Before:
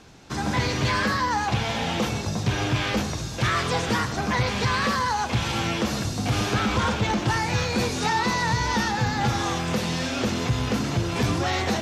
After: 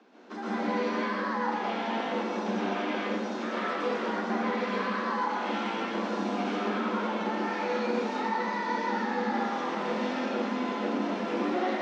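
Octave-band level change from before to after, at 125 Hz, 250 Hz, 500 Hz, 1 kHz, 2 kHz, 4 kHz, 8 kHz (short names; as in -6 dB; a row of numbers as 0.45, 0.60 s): -20.0, -3.5, -1.5, -4.0, -7.0, -12.5, -20.0 dB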